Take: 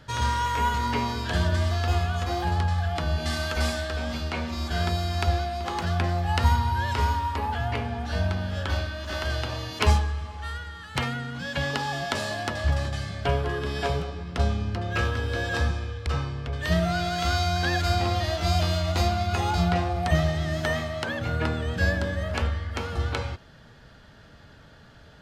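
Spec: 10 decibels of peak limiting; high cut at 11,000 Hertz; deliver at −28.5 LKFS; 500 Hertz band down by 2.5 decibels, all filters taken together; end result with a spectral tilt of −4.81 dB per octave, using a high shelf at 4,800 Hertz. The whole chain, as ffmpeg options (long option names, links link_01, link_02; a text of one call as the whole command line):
ffmpeg -i in.wav -af "lowpass=11000,equalizer=frequency=500:width_type=o:gain=-3.5,highshelf=frequency=4800:gain=-8.5,volume=0.5dB,alimiter=limit=-17.5dB:level=0:latency=1" out.wav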